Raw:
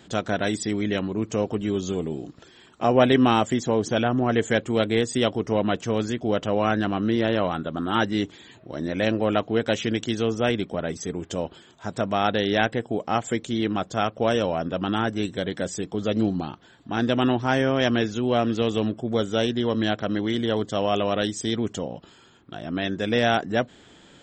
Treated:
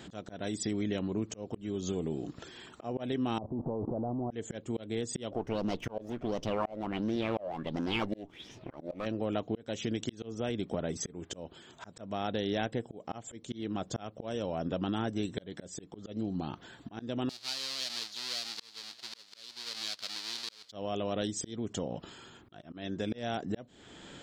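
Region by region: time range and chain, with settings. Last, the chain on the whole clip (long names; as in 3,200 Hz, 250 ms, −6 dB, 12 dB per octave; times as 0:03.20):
0:03.38–0:04.31: converter with a step at zero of −24 dBFS + Butterworth low-pass 980 Hz 48 dB per octave + output level in coarse steps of 16 dB
0:05.31–0:09.06: lower of the sound and its delayed copy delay 0.35 ms + high-shelf EQ 3,000 Hz −11.5 dB + auto-filter bell 1.4 Hz 560–6,000 Hz +17 dB
0:17.29–0:20.72: each half-wave held at its own peak + resonant band-pass 4,400 Hz, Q 4 + single-tap delay 965 ms −21.5 dB
whole clip: dynamic equaliser 1,600 Hz, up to −7 dB, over −38 dBFS, Q 0.72; volume swells 527 ms; downward compressor 3 to 1, threshold −34 dBFS; level +2 dB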